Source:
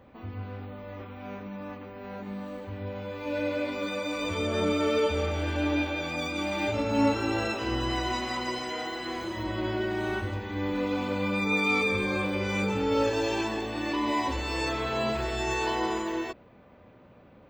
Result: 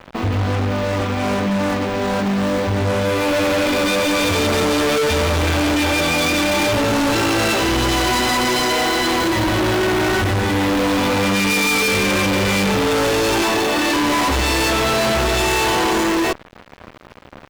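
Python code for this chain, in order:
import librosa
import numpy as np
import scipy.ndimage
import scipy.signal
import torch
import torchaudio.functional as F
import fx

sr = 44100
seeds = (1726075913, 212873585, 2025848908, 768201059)

y = fx.highpass(x, sr, hz=320.0, slope=12, at=(13.42, 13.96))
y = fx.fuzz(y, sr, gain_db=43.0, gate_db=-50.0)
y = y * 10.0 ** (-3.0 / 20.0)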